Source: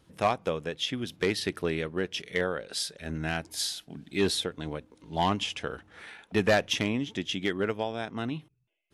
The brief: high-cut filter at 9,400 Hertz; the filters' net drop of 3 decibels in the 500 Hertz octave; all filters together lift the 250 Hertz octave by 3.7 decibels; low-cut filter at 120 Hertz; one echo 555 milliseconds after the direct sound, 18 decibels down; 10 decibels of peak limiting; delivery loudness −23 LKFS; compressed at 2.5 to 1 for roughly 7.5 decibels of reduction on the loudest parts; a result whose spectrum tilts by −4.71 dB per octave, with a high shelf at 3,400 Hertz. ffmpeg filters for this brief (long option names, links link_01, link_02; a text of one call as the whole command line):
ffmpeg -i in.wav -af "highpass=120,lowpass=9400,equalizer=frequency=250:width_type=o:gain=7,equalizer=frequency=500:width_type=o:gain=-6,highshelf=frequency=3400:gain=-9,acompressor=threshold=-31dB:ratio=2.5,alimiter=level_in=4dB:limit=-24dB:level=0:latency=1,volume=-4dB,aecho=1:1:555:0.126,volume=16.5dB" out.wav